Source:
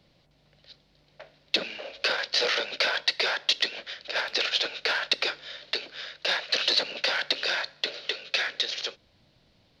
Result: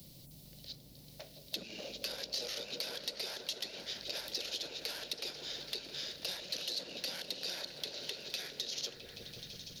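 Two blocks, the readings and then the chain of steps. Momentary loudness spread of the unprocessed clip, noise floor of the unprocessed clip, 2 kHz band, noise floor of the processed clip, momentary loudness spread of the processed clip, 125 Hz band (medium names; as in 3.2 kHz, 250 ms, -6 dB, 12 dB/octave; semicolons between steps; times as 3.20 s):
8 LU, -65 dBFS, -19.5 dB, -56 dBFS, 12 LU, no reading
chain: treble shelf 9.4 kHz +12 dB; compression, threshold -33 dBFS, peak gain reduction 15 dB; FFT filter 160 Hz 0 dB, 1.6 kHz -20 dB, 4.7 kHz -6 dB, 11 kHz +9 dB; delay with an opening low-pass 166 ms, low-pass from 400 Hz, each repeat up 1 oct, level -3 dB; saturation -30.5 dBFS, distortion -19 dB; three bands compressed up and down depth 40%; trim +5.5 dB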